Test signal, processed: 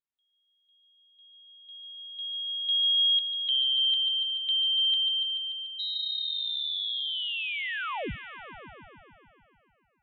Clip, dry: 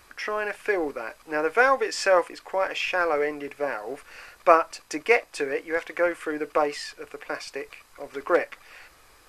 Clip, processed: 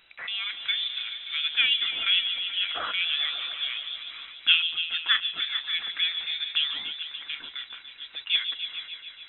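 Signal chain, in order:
echo whose low-pass opens from repeat to repeat 145 ms, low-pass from 750 Hz, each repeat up 1 octave, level −6 dB
voice inversion scrambler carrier 3,900 Hz
level −4 dB

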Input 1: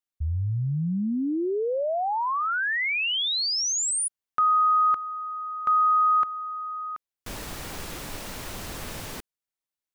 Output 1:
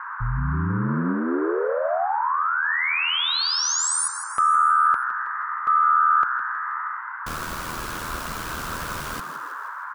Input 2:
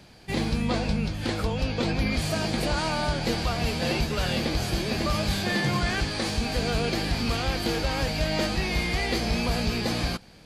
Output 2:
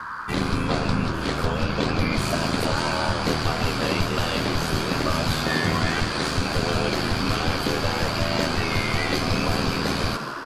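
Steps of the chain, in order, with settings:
ring modulation 40 Hz
echo with shifted repeats 160 ms, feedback 56%, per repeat +130 Hz, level −11 dB
noise in a band 940–1,600 Hz −39 dBFS
level +5 dB

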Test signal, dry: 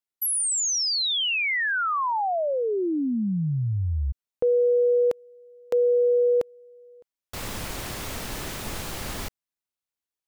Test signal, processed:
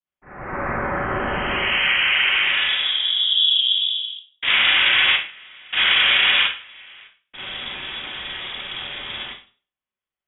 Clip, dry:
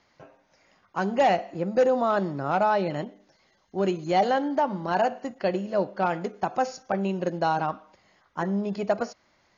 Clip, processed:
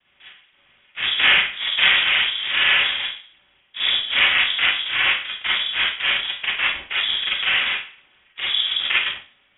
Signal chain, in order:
dynamic equaliser 380 Hz, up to −3 dB, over −30 dBFS, Q 1
cochlear-implant simulation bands 3
four-comb reverb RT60 0.38 s, combs from 33 ms, DRR −6.5 dB
voice inversion scrambler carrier 3,600 Hz
level −1 dB

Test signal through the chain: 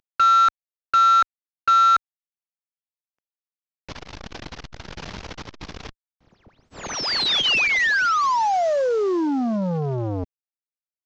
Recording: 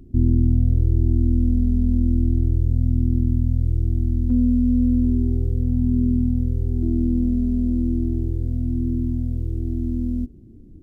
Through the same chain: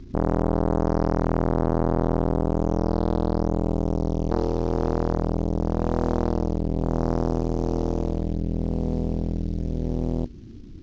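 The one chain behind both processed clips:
variable-slope delta modulation 32 kbit/s
saturating transformer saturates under 680 Hz
level +4 dB

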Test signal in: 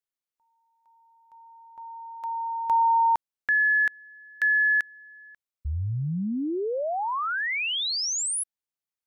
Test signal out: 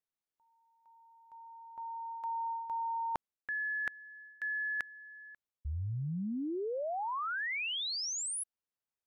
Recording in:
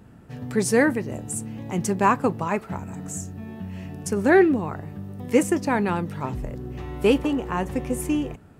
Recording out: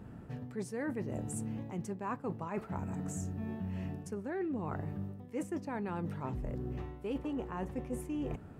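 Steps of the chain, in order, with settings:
high-shelf EQ 2,300 Hz −8.5 dB
reversed playback
downward compressor 16 to 1, threshold −34 dBFS
reversed playback

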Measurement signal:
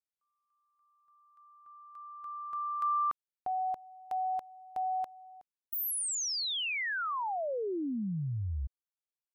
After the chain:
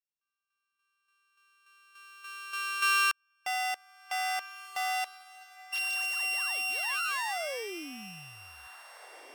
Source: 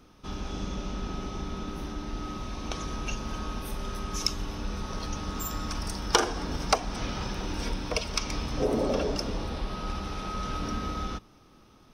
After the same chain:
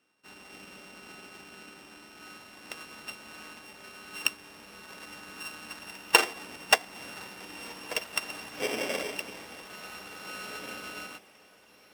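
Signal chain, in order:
samples sorted by size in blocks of 16 samples
meter weighting curve A
feedback delay with all-pass diffusion 1,828 ms, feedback 48%, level −11 dB
expander for the loud parts 1.5 to 1, over −52 dBFS
level +3.5 dB

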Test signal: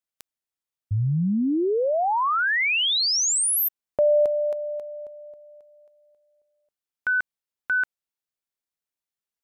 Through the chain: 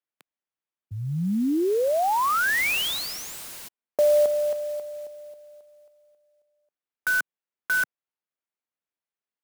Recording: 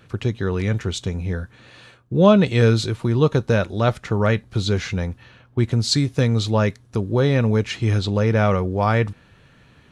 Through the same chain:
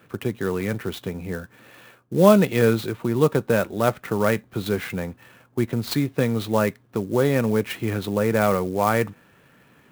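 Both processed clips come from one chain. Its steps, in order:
three-way crossover with the lows and the highs turned down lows −16 dB, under 150 Hz, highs −16 dB, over 3,400 Hz
converter with an unsteady clock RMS 0.027 ms

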